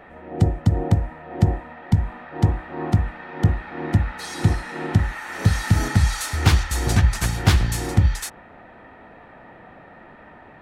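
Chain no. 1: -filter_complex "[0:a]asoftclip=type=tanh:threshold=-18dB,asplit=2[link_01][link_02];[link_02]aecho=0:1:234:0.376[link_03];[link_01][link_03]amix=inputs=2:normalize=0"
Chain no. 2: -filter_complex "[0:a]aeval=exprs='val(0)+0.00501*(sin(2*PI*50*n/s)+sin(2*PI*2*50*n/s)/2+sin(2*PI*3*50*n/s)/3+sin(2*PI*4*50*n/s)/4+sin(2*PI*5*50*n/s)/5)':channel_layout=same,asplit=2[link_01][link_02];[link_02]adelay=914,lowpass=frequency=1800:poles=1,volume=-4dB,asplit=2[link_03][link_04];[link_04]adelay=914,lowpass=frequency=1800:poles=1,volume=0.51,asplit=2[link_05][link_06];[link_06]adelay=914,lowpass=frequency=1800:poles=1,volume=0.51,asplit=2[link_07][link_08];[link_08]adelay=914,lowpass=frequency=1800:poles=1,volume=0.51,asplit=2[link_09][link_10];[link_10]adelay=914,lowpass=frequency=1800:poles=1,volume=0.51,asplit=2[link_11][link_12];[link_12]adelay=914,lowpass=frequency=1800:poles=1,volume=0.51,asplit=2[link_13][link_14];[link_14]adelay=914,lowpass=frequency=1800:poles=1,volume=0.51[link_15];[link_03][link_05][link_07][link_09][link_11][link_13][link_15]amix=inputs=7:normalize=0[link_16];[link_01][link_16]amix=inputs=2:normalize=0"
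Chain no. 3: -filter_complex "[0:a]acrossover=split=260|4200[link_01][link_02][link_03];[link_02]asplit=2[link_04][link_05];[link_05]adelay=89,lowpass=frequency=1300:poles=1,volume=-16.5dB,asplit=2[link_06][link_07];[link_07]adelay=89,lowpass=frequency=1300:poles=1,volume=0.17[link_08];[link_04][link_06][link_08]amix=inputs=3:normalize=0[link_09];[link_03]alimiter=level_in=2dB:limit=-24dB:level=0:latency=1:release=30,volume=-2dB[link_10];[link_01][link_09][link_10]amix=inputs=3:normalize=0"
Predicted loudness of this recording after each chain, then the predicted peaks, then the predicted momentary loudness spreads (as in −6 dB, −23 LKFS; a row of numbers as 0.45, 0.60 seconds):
−26.5, −21.0, −22.5 LKFS; −15.0, −2.5, −3.5 dBFS; 21, 11, 9 LU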